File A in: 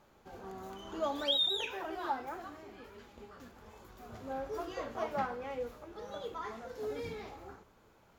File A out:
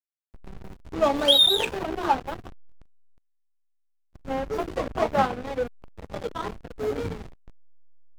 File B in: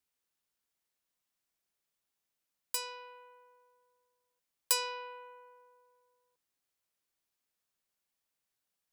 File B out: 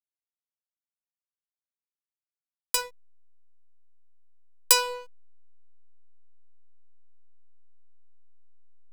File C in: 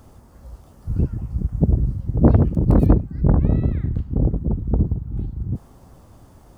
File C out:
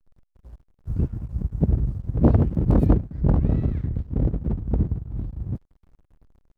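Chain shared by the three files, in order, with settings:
backlash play -33.5 dBFS; match loudness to -24 LUFS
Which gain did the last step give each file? +14.0, +11.0, -3.0 dB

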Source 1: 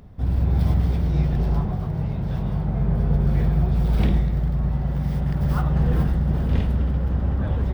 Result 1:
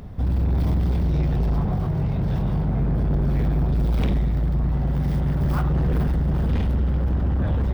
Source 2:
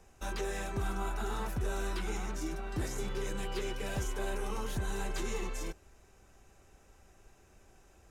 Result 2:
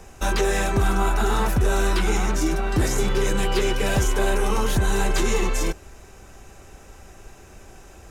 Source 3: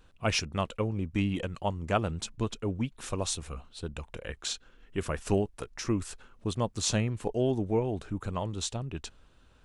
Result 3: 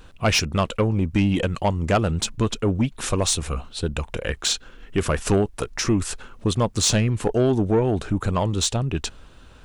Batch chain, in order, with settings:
in parallel at 0 dB: compressor, threshold -30 dBFS; on the sum: soft clip -18.5 dBFS; match loudness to -23 LUFS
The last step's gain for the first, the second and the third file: +2.0, +9.5, +7.0 dB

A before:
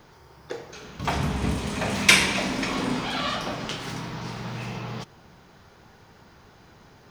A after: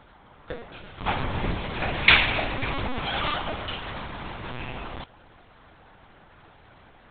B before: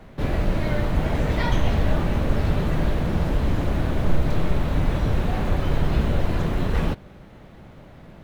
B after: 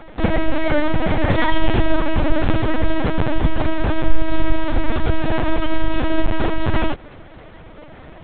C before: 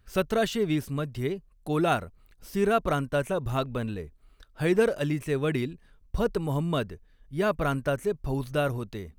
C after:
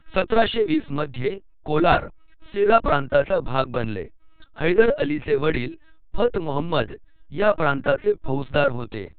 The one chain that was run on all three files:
bell 180 Hz -9.5 dB 0.95 oct; notch 370 Hz, Q 12; flange 1.4 Hz, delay 2 ms, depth 7.5 ms, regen -46%; LPC vocoder at 8 kHz pitch kept; normalise peaks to -2 dBFS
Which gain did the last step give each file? +5.5, +11.5, +12.5 dB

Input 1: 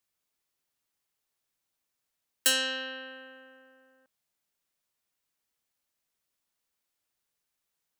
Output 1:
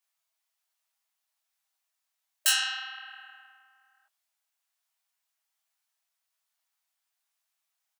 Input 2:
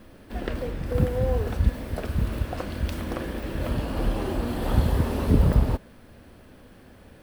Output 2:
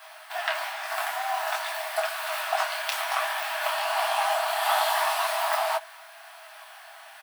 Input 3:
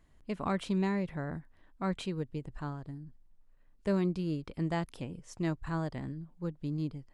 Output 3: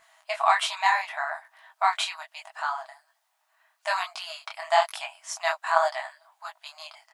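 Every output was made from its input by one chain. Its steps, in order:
brick-wall FIR high-pass 620 Hz; comb 6.2 ms, depth 39%; detuned doubles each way 42 cents; match loudness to -27 LUFS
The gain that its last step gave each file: +4.0, +15.0, +19.5 dB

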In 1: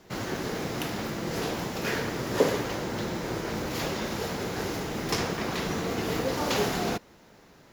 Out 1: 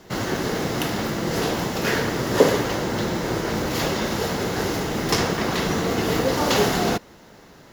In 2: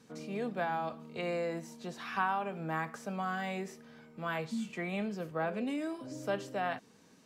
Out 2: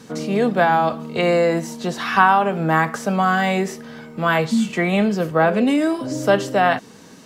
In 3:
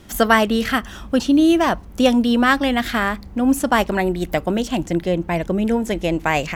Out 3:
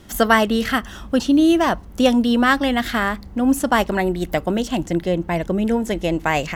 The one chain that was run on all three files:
notch 2400 Hz, Q 17; normalise peaks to -1.5 dBFS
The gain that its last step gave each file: +7.0, +18.0, -0.5 dB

